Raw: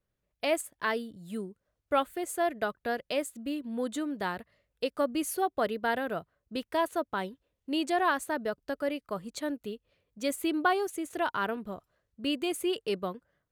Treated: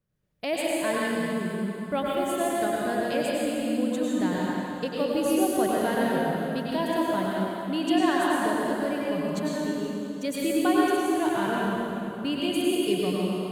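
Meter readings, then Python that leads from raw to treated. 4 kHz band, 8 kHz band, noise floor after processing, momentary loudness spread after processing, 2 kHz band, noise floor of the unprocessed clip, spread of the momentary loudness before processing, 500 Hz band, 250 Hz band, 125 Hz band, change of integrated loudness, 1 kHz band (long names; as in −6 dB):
+4.5 dB, +4.5 dB, −36 dBFS, 7 LU, +3.0 dB, −83 dBFS, 11 LU, +5.5 dB, +9.0 dB, +13.5 dB, +5.5 dB, +3.5 dB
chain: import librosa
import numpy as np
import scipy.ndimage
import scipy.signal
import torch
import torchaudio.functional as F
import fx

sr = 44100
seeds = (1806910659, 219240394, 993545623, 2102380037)

y = fx.peak_eq(x, sr, hz=160.0, db=11.0, octaves=1.2)
y = fx.rev_plate(y, sr, seeds[0], rt60_s=2.8, hf_ratio=0.9, predelay_ms=85, drr_db=-5.5)
y = fx.dynamic_eq(y, sr, hz=1300.0, q=3.6, threshold_db=-44.0, ratio=4.0, max_db=-7)
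y = y * librosa.db_to_amplitude(-2.0)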